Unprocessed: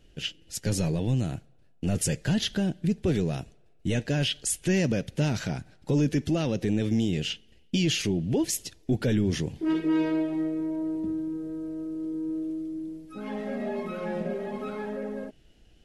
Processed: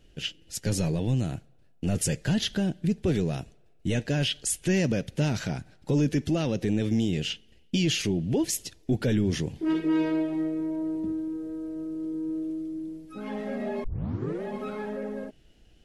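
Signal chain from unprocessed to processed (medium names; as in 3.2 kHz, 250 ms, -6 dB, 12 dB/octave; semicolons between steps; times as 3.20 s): 11.12–11.76 s: peaking EQ 160 Hz -8 dB 0.4 oct; 13.84 s: tape start 0.59 s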